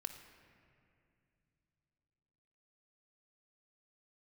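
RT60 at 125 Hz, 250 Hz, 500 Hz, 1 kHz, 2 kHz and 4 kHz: 4.0, 3.6, 2.8, 2.2, 2.4, 1.6 s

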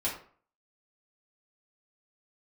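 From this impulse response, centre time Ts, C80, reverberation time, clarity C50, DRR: 28 ms, 10.5 dB, 0.50 s, 6.5 dB, -6.5 dB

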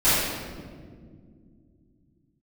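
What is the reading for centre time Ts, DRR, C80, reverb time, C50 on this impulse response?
0.119 s, -17.5 dB, -0.5 dB, 2.1 s, -4.0 dB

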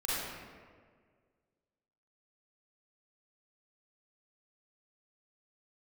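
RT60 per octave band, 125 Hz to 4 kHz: 2.0, 1.9, 2.0, 1.6, 1.4, 1.0 s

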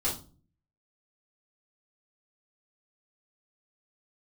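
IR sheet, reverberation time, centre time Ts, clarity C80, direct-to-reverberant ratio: 0.35 s, 26 ms, 15.0 dB, -8.0 dB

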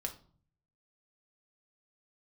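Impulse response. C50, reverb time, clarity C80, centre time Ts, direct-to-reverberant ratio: 13.0 dB, 0.50 s, 18.0 dB, 10 ms, 3.0 dB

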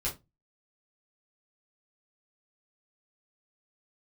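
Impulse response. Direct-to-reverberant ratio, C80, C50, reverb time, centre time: -6.5 dB, 22.0 dB, 12.0 dB, 0.20 s, 19 ms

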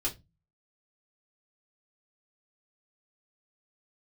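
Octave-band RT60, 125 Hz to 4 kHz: 0.55, 0.40, 0.25, 0.20, 0.20, 0.20 s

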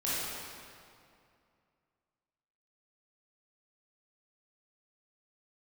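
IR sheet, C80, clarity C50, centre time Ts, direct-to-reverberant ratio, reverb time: -2.0 dB, -5.5 dB, 0.166 s, -10.0 dB, 2.4 s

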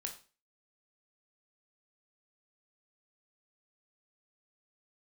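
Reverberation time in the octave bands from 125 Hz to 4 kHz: 0.35, 0.40, 0.35, 0.35, 0.35, 0.35 s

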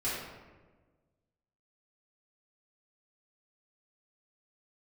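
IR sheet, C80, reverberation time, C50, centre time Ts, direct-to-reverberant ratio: 2.5 dB, 1.4 s, -0.5 dB, 80 ms, -11.0 dB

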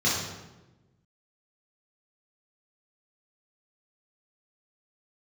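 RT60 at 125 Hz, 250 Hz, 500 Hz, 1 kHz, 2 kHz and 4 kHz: 1.6, 1.5, 1.2, 1.0, 0.90, 0.75 s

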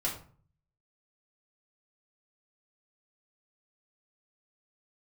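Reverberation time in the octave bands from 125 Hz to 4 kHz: 0.80, 0.60, 0.45, 0.45, 0.35, 0.30 s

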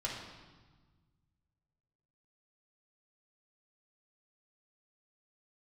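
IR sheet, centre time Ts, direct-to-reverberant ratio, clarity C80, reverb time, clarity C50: 58 ms, -4.5 dB, 5.0 dB, 1.4 s, 2.5 dB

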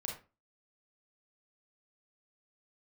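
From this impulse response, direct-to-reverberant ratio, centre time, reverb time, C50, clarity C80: -1.0 dB, 30 ms, 0.30 s, 4.5 dB, 11.5 dB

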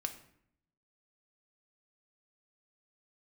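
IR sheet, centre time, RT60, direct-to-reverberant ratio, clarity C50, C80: 10 ms, 0.70 s, 5.5 dB, 11.5 dB, 14.5 dB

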